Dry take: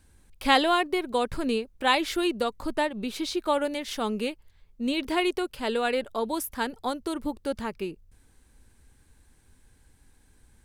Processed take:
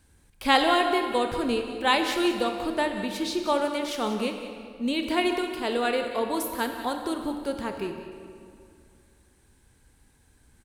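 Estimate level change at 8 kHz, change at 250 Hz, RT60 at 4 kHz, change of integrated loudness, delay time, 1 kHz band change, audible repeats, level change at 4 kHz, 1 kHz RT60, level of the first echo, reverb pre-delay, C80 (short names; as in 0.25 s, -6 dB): +1.0 dB, +1.5 dB, 1.6 s, +1.0 dB, 0.186 s, +1.5 dB, 1, +1.0 dB, 2.2 s, -13.0 dB, 23 ms, 6.5 dB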